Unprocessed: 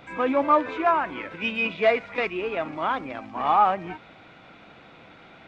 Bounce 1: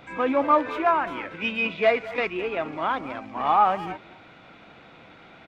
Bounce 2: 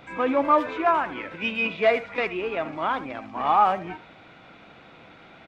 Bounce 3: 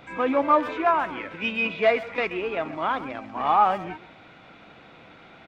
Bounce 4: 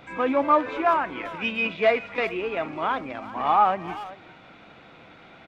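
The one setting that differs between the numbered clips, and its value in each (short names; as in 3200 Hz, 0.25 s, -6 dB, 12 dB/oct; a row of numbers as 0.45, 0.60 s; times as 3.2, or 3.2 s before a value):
speakerphone echo, time: 210, 80, 130, 390 ms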